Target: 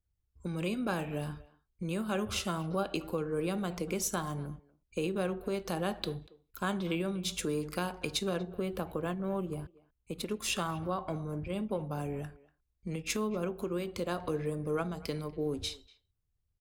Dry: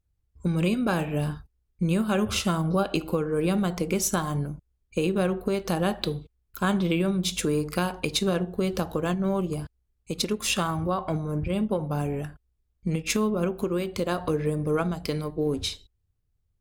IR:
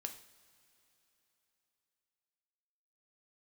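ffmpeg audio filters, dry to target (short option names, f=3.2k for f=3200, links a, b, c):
-filter_complex "[0:a]asettb=1/sr,asplit=3[a][b][c];[a]atrim=end=8.384[d];[b]atrim=start=8.38:end=10.3,asetpts=PTS-STARTPTS,afade=t=in:d=0.004:c=qsin,afade=t=out:st=1.916:d=0.004:c=qsin,equalizer=f=5.6k:w=1.4:g=-13[e];[c]atrim=start=10.296[f];[d][e]acrossfade=d=0.004:c1=hsin:c2=qsin[g];[g][f]acrossfade=d=0.004:c1=qsin:c2=hsin,acrossover=split=260[h][i];[h]alimiter=level_in=4dB:limit=-24dB:level=0:latency=1,volume=-4dB[j];[j][i]amix=inputs=2:normalize=0,asplit=2[k][l];[l]adelay=240,highpass=300,lowpass=3.4k,asoftclip=type=hard:threshold=-18.5dB,volume=-20dB[m];[k][m]amix=inputs=2:normalize=0,volume=-7dB"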